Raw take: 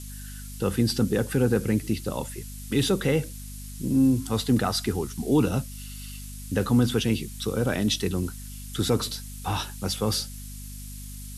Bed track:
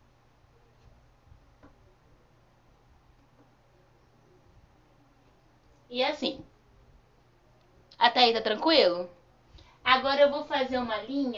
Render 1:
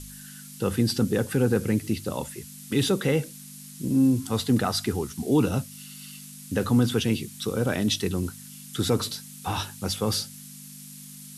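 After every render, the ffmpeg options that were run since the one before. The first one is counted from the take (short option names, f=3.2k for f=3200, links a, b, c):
-af "bandreject=f=50:t=h:w=4,bandreject=f=100:t=h:w=4"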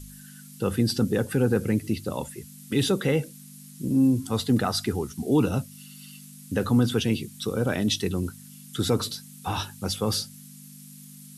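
-af "afftdn=nr=6:nf=-44"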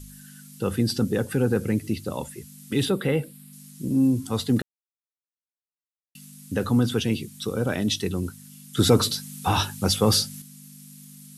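-filter_complex "[0:a]asettb=1/sr,asplit=3[a][b][c];[a]atrim=end=2.854[d];[b]atrim=start=2.85:end=3.53,asetpts=PTS-STARTPTS,afade=t=in:d=0.004:c=qsin,afade=t=out:st=0.676:d=0.004:c=qsin,equalizer=f=6.2k:w=2.7:g=-14.5[e];[c]atrim=start=3.526[f];[d][e]acrossfade=d=0.004:c1=hsin:c2=qsin[g];[g][f]acrossfade=d=0.004:c1=qsin:c2=hsin,asettb=1/sr,asplit=3[h][i][j];[h]atrim=end=8.774[k];[i]atrim=start=8.77:end=10.42,asetpts=PTS-STARTPTS,afade=t=in:d=0.004:c=qsin,afade=t=out:st=1.646:d=0.004:c=qsin,acontrast=72[l];[j]atrim=start=10.416[m];[k][l]acrossfade=d=0.004:c1=hsin:c2=qsin[n];[n][m]acrossfade=d=0.004:c1=qsin:c2=hsin,asplit=3[o][p][q];[o]atrim=end=4.62,asetpts=PTS-STARTPTS,afade=t=out:st=4.616:d=0.004:c=hsin[r];[p]atrim=start=4.62:end=6.15,asetpts=PTS-STARTPTS,volume=0[s];[q]atrim=start=6.15,asetpts=PTS-STARTPTS,afade=t=in:d=0.004:c=hsin[t];[r][s][t]concat=n=3:v=0:a=1"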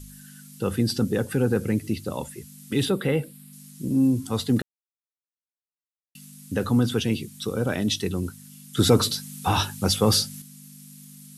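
-af anull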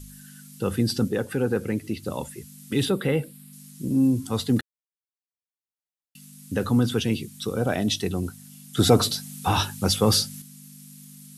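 -filter_complex "[0:a]asettb=1/sr,asplit=3[a][b][c];[a]atrim=end=1.084[d];[b]atrim=start=1.08:end=2.03,asetpts=PTS-STARTPTS,afade=t=in:d=0.004:c=qsin,afade=t=out:st=0.946:d=0.004:c=qsin,bass=f=250:g=-5,treble=f=4k:g=-4[e];[c]atrim=start=2.026[f];[d][e]acrossfade=d=0.004:c1=hsin:c2=qsin[g];[g][f]acrossfade=d=0.004:c1=qsin:c2=hsin,asettb=1/sr,asplit=3[h][i][j];[h]atrim=end=7.584[k];[i]atrim=start=7.58:end=9.35,asetpts=PTS-STARTPTS,afade=t=in:d=0.004:c=qsin,afade=t=out:st=1.766:d=0.004:c=qsin,equalizer=f=700:w=5.1:g=10[l];[j]atrim=start=9.346[m];[k][l]acrossfade=d=0.004:c1=hsin:c2=qsin[n];[n][m]acrossfade=d=0.004:c1=qsin:c2=hsin,asplit=2[o][p];[o]atrim=end=4.61,asetpts=PTS-STARTPTS,afade=t=out:st=4.606:d=0.004:c=hsin[q];[p]atrim=start=4.61,asetpts=PTS-STARTPTS,afade=t=in:d=1.94[r];[q][r]concat=n=2:v=0:a=1"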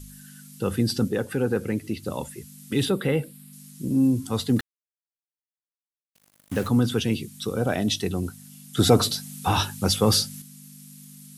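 -filter_complex "[0:a]asettb=1/sr,asplit=3[a][b][c];[a]atrim=end=4.594[d];[b]atrim=start=4.59:end=6.68,asetpts=PTS-STARTPTS,afade=t=in:d=0.004:c=qsin,afade=t=out:st=2.086:d=0.004:c=qsin,acrusher=bits=5:mix=0:aa=0.5[e];[c]atrim=start=6.676[f];[d][e]acrossfade=d=0.004:c1=hsin:c2=qsin[g];[g][f]acrossfade=d=0.004:c1=qsin:c2=hsin"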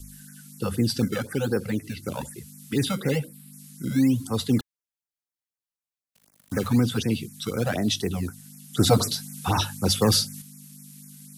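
-filter_complex "[0:a]acrossover=split=270|530|4300[a][b][c][d];[b]acrusher=samples=17:mix=1:aa=0.000001:lfo=1:lforange=17:lforate=1.1[e];[a][e][c][d]amix=inputs=4:normalize=0,afftfilt=real='re*(1-between(b*sr/1024,290*pow(3800/290,0.5+0.5*sin(2*PI*4*pts/sr))/1.41,290*pow(3800/290,0.5+0.5*sin(2*PI*4*pts/sr))*1.41))':imag='im*(1-between(b*sr/1024,290*pow(3800/290,0.5+0.5*sin(2*PI*4*pts/sr))/1.41,290*pow(3800/290,0.5+0.5*sin(2*PI*4*pts/sr))*1.41))':win_size=1024:overlap=0.75"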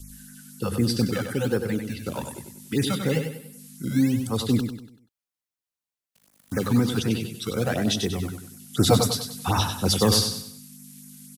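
-af "aecho=1:1:96|192|288|384|480:0.447|0.174|0.0679|0.0265|0.0103"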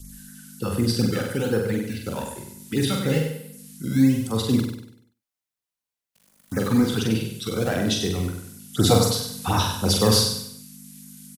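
-filter_complex "[0:a]asplit=2[a][b];[b]adelay=45,volume=-4dB[c];[a][c]amix=inputs=2:normalize=0,aecho=1:1:98:0.106"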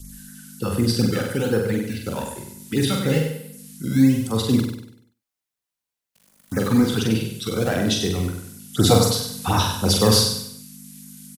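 -af "volume=2dB"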